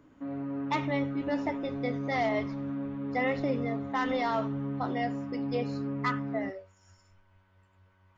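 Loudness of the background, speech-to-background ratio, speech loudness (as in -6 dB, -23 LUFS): -35.5 LUFS, 2.0 dB, -33.5 LUFS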